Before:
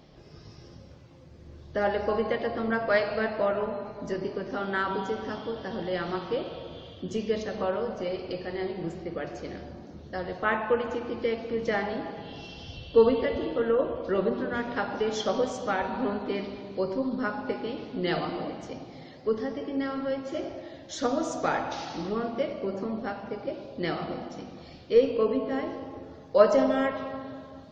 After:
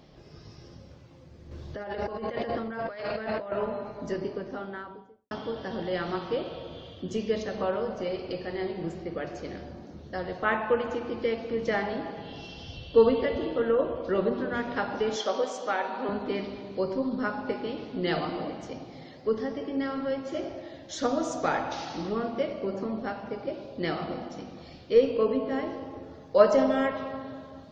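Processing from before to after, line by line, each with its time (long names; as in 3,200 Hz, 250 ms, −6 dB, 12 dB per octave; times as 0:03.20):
0:01.51–0:03.52: compressor whose output falls as the input rises −34 dBFS
0:04.05–0:05.31: fade out and dull
0:15.16–0:16.09: high-pass filter 370 Hz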